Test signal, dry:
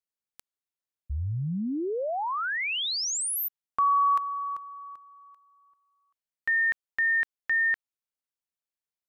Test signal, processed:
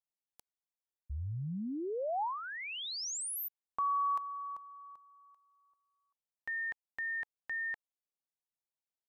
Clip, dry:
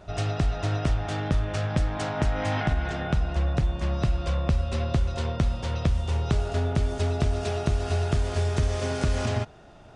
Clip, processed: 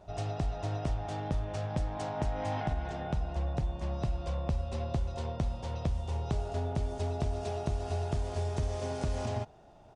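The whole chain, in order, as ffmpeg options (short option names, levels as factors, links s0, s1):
-af "firequalizer=gain_entry='entry(320,0);entry(850,5);entry(1300,-5);entry(5700,-1)':delay=0.05:min_phase=1,volume=0.398"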